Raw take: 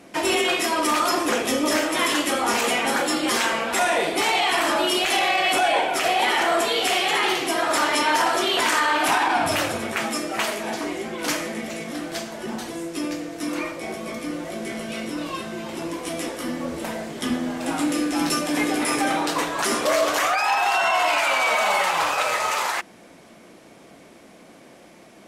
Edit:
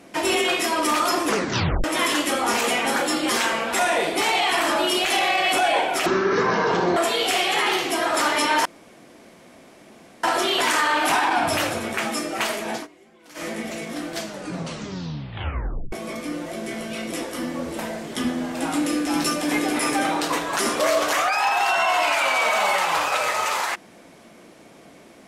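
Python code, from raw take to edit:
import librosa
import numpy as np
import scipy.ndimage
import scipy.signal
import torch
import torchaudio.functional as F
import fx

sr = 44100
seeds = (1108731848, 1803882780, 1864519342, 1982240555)

y = fx.edit(x, sr, fx.tape_stop(start_s=1.28, length_s=0.56),
    fx.speed_span(start_s=6.06, length_s=0.47, speed=0.52),
    fx.insert_room_tone(at_s=8.22, length_s=1.58),
    fx.fade_down_up(start_s=10.71, length_s=0.77, db=-22.5, fade_s=0.15, curve='qsin'),
    fx.tape_stop(start_s=12.17, length_s=1.74),
    fx.cut(start_s=15.11, length_s=1.07), tone=tone)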